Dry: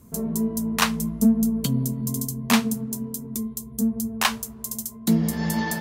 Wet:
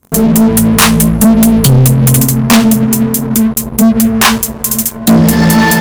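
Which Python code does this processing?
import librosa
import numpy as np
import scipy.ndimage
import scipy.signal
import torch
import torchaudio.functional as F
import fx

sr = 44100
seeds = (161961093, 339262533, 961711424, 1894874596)

y = fx.graphic_eq_15(x, sr, hz=(100, 250, 10000), db=(11, -4, 7), at=(0.5, 2.21))
y = fx.leveller(y, sr, passes=5)
y = F.gain(torch.from_numpy(y), 3.0).numpy()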